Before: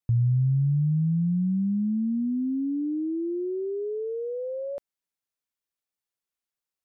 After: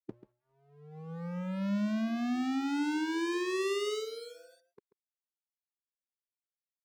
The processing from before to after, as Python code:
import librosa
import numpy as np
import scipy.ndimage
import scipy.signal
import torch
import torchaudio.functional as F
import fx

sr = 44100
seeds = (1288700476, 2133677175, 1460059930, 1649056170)

p1 = fx.dereverb_blind(x, sr, rt60_s=1.7)
p2 = scipy.signal.sosfilt(scipy.signal.ellip(3, 1.0, 60, [200.0, 410.0], 'bandpass', fs=sr, output='sos'), p1)
p3 = fx.rider(p2, sr, range_db=5, speed_s=0.5)
p4 = p2 + (p3 * librosa.db_to_amplitude(-1.0))
p5 = np.sign(p4) * np.maximum(np.abs(p4) - 10.0 ** (-46.0 / 20.0), 0.0)
p6 = p5 + fx.echo_single(p5, sr, ms=137, db=-14.0, dry=0)
y = fx.formant_shift(p6, sr, semitones=4)